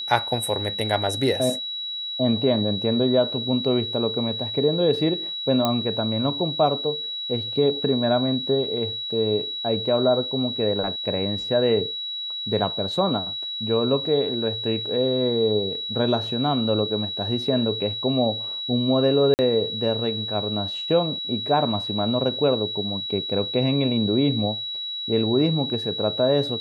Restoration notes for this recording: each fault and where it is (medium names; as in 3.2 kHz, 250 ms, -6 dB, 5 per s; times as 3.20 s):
whine 3.9 kHz -28 dBFS
5.65 s: pop -8 dBFS
19.34–19.39 s: dropout 49 ms